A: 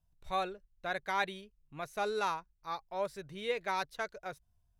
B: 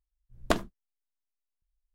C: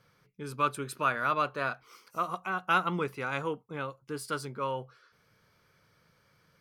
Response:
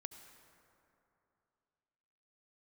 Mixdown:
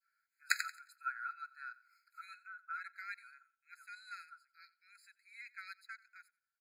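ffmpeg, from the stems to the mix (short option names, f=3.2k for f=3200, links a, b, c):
-filter_complex "[0:a]adelay=1900,volume=-8.5dB,asplit=2[a][b];[b]volume=-21dB[c];[1:a]volume=2.5dB,asplit=2[d][e];[e]volume=-7dB[f];[2:a]highshelf=f=1.5k:t=q:w=1.5:g=-14,volume=-2dB,afade=t=out:st=2.17:d=0.77:silence=0.223872,asplit=2[g][h];[h]volume=-18.5dB[i];[c][f][i]amix=inputs=3:normalize=0,aecho=0:1:89|178|267|356:1|0.26|0.0676|0.0176[j];[a][d][g][j]amix=inputs=4:normalize=0,adynamicequalizer=threshold=0.00794:dfrequency=1400:dqfactor=0.78:tfrequency=1400:tqfactor=0.78:attack=5:release=100:ratio=0.375:range=2.5:mode=cutabove:tftype=bell,afftfilt=real='re*eq(mod(floor(b*sr/1024/1300),2),1)':imag='im*eq(mod(floor(b*sr/1024/1300),2),1)':win_size=1024:overlap=0.75"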